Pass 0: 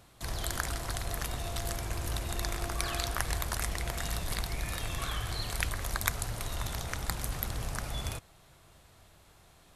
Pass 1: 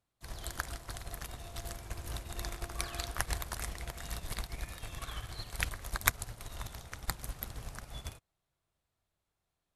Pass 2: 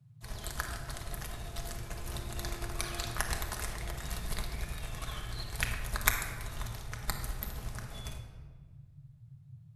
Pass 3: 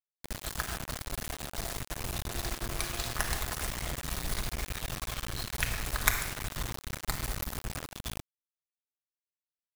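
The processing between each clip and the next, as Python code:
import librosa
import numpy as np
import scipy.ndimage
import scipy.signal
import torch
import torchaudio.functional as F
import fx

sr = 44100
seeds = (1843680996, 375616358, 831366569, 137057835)

y1 = fx.upward_expand(x, sr, threshold_db=-46.0, expansion=2.5)
y1 = F.gain(torch.from_numpy(y1), 3.5).numpy()
y2 = fx.dmg_noise_band(y1, sr, seeds[0], low_hz=94.0, high_hz=150.0, level_db=-56.0)
y2 = fx.room_shoebox(y2, sr, seeds[1], volume_m3=1500.0, walls='mixed', distance_m=1.4)
y3 = fx.quant_dither(y2, sr, seeds[2], bits=6, dither='none')
y3 = F.gain(torch.from_numpy(y3), 1.0).numpy()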